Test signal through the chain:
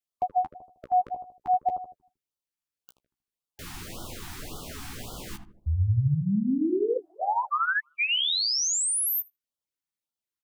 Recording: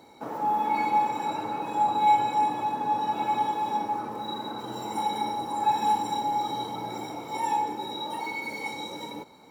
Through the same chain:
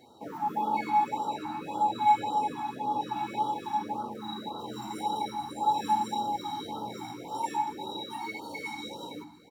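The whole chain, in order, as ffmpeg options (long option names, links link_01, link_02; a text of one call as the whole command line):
ffmpeg -i in.wav -filter_complex "[0:a]flanger=delay=7.8:depth=9.2:regen=-15:speed=0.49:shape=triangular,asplit=2[link_01][link_02];[link_02]adelay=78,lowpass=frequency=900:poles=1,volume=-6dB,asplit=2[link_03][link_04];[link_04]adelay=78,lowpass=frequency=900:poles=1,volume=0.47,asplit=2[link_05][link_06];[link_06]adelay=78,lowpass=frequency=900:poles=1,volume=0.47,asplit=2[link_07][link_08];[link_08]adelay=78,lowpass=frequency=900:poles=1,volume=0.47,asplit=2[link_09][link_10];[link_10]adelay=78,lowpass=frequency=900:poles=1,volume=0.47,asplit=2[link_11][link_12];[link_12]adelay=78,lowpass=frequency=900:poles=1,volume=0.47[link_13];[link_01][link_03][link_05][link_07][link_09][link_11][link_13]amix=inputs=7:normalize=0,afftfilt=real='re*(1-between(b*sr/1024,470*pow(2100/470,0.5+0.5*sin(2*PI*1.8*pts/sr))/1.41,470*pow(2100/470,0.5+0.5*sin(2*PI*1.8*pts/sr))*1.41))':imag='im*(1-between(b*sr/1024,470*pow(2100/470,0.5+0.5*sin(2*PI*1.8*pts/sr))/1.41,470*pow(2100/470,0.5+0.5*sin(2*PI*1.8*pts/sr))*1.41))':win_size=1024:overlap=0.75" out.wav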